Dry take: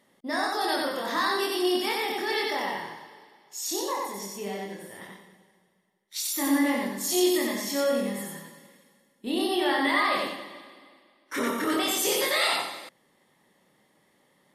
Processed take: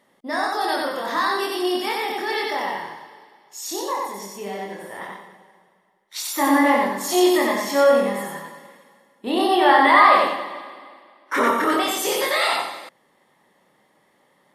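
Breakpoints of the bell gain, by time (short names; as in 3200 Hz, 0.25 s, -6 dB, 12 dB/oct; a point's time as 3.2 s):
bell 950 Hz 2.4 oct
4.52 s +5.5 dB
4.97 s +15 dB
11.48 s +15 dB
11.95 s +7 dB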